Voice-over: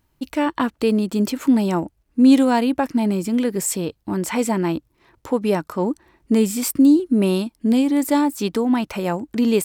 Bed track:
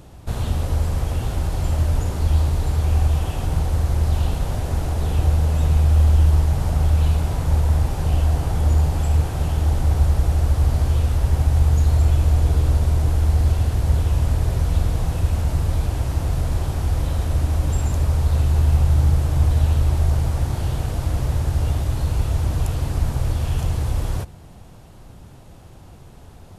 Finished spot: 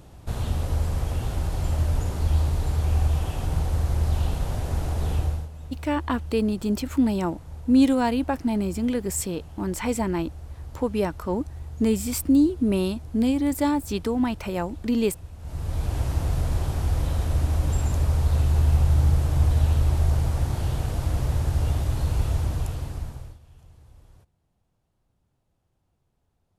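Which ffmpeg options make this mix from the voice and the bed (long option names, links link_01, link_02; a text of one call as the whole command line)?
ffmpeg -i stem1.wav -i stem2.wav -filter_complex "[0:a]adelay=5500,volume=-5dB[link_01];[1:a]volume=14dB,afade=type=out:start_time=5.13:duration=0.36:silence=0.141254,afade=type=in:start_time=15.39:duration=0.6:silence=0.125893,afade=type=out:start_time=22.29:duration=1.1:silence=0.0473151[link_02];[link_01][link_02]amix=inputs=2:normalize=0" out.wav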